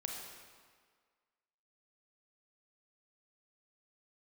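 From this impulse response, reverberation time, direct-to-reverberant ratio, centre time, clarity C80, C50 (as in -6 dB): 1.7 s, 0.0 dB, 73 ms, 3.5 dB, 2.0 dB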